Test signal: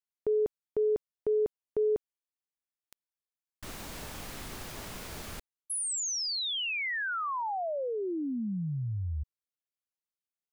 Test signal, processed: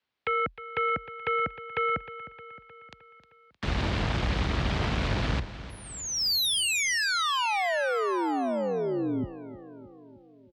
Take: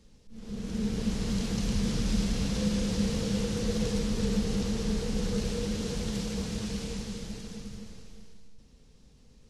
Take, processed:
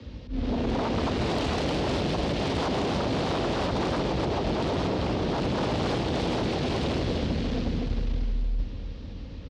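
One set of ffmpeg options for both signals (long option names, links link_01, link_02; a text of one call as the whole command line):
ffmpeg -i in.wav -filter_complex "[0:a]lowpass=frequency=4000:width=0.5412,lowpass=frequency=4000:width=1.3066,acrossover=split=150|2000[link_01][link_02][link_03];[link_01]dynaudnorm=framelen=510:gausssize=9:maxgain=7dB[link_04];[link_04][link_02][link_03]amix=inputs=3:normalize=0,alimiter=limit=-19.5dB:level=0:latency=1:release=235,acompressor=threshold=-37dB:ratio=1.5:release=520,aeval=exprs='0.0562*sin(PI/2*3.98*val(0)/0.0562)':channel_layout=same,afreqshift=39,aecho=1:1:309|618|927|1236|1545|1854:0.188|0.113|0.0678|0.0407|0.0244|0.0146,volume=1dB" out.wav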